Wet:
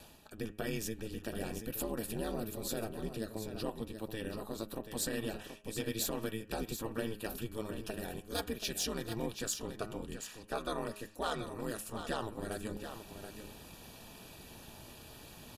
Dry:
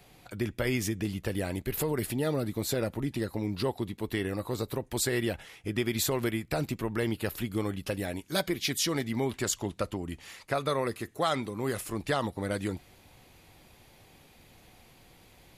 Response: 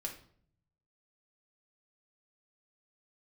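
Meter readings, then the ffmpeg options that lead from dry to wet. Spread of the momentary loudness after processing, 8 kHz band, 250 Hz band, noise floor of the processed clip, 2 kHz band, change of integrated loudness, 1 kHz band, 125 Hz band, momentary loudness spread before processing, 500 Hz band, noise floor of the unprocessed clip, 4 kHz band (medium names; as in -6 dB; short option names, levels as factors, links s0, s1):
15 LU, -5.0 dB, -8.0 dB, -54 dBFS, -8.5 dB, -8.0 dB, -7.0 dB, -10.5 dB, 6 LU, -7.5 dB, -58 dBFS, -6.5 dB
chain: -filter_complex "[0:a]highshelf=f=5200:g=3.5,bandreject=f=104.3:t=h:w=4,bandreject=f=208.6:t=h:w=4,bandreject=f=312.9:t=h:w=4,bandreject=f=417.2:t=h:w=4,bandreject=f=521.5:t=h:w=4,bandreject=f=625.8:t=h:w=4,bandreject=f=730.1:t=h:w=4,bandreject=f=834.4:t=h:w=4,bandreject=f=938.7:t=h:w=4,bandreject=f=1043:t=h:w=4,bandreject=f=1147.3:t=h:w=4,bandreject=f=1251.6:t=h:w=4,bandreject=f=1355.9:t=h:w=4,bandreject=f=1460.2:t=h:w=4,bandreject=f=1564.5:t=h:w=4,bandreject=f=1668.8:t=h:w=4,bandreject=f=1773.1:t=h:w=4,bandreject=f=1877.4:t=h:w=4,bandreject=f=1981.7:t=h:w=4,bandreject=f=2086:t=h:w=4,bandreject=f=2190.3:t=h:w=4,bandreject=f=2294.6:t=h:w=4,bandreject=f=2398.9:t=h:w=4,bandreject=f=2503.2:t=h:w=4,bandreject=f=2607.5:t=h:w=4,bandreject=f=2711.8:t=h:w=4,bandreject=f=2816.1:t=h:w=4,bandreject=f=2920.4:t=h:w=4,bandreject=f=3024.7:t=h:w=4,bandreject=f=3129:t=h:w=4,areverse,acompressor=mode=upward:threshold=0.0251:ratio=2.5,areverse,aeval=exprs='val(0)*sin(2*PI*110*n/s)':c=same,asoftclip=type=hard:threshold=0.0944,asuperstop=centerf=2100:order=8:qfactor=6.2,asplit=2[s0][s1];[s1]aecho=0:1:731:0.355[s2];[s0][s2]amix=inputs=2:normalize=0,volume=0.562"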